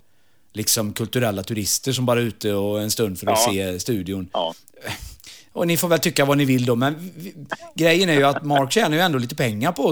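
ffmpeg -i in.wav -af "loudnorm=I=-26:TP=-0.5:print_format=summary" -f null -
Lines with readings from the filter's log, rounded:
Input Integrated:    -20.0 LUFS
Input True Peak:      -2.6 dBTP
Input LRA:             3.3 LU
Input Threshold:     -30.8 LUFS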